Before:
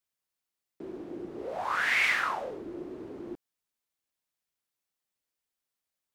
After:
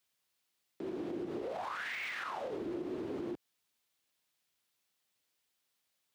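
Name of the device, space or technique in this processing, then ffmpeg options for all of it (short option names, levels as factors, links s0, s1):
broadcast voice chain: -af "highpass=71,deesser=0.9,acompressor=threshold=0.0158:ratio=6,equalizer=f=3400:t=o:w=1.3:g=4.5,alimiter=level_in=4.47:limit=0.0631:level=0:latency=1:release=92,volume=0.224,volume=1.88"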